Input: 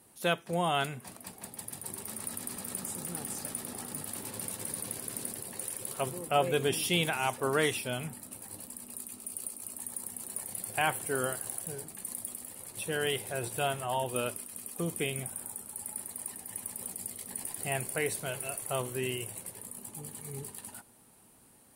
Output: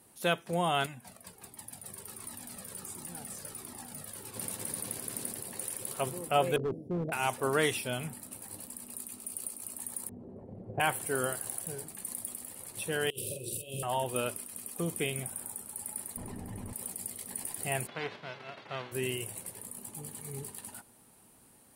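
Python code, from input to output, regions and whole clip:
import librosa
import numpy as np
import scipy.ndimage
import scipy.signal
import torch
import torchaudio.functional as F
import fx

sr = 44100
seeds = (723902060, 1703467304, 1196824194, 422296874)

y = fx.chain(x, sr, fx.clip_hard(threshold_db=-30.0),
    fx.comb_cascade(direction='falling', hz=1.4), at=(0.86, 4.36))
y = fx.chain(y, sr, fx.ellip_lowpass(hz=630.0, order=4, stop_db=50),
    fx.overload_stage(gain_db=28.0), at=(6.56, 7.12))
y = fx.chain(y, sr, fx.lowpass_res(hz=490.0, q=1.6),
    fx.low_shelf(hz=270.0, db=9.5), at=(10.09, 10.8))
y = fx.chain(y, sr, fx.cheby1_bandstop(low_hz=580.0, high_hz=2600.0, order=5),
    fx.over_compress(threshold_db=-40.0, ratio=-0.5),
    fx.doubler(ms=46.0, db=-4.0), at=(13.1, 13.83))
y = fx.chain(y, sr, fx.tilt_eq(slope=-4.5),
    fx.env_flatten(amount_pct=70), at=(16.17, 16.73))
y = fx.envelope_flatten(y, sr, power=0.3, at=(17.86, 18.91), fade=0.02)
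y = fx.bandpass_edges(y, sr, low_hz=190.0, high_hz=6400.0, at=(17.86, 18.91), fade=0.02)
y = fx.air_absorb(y, sr, metres=360.0, at=(17.86, 18.91), fade=0.02)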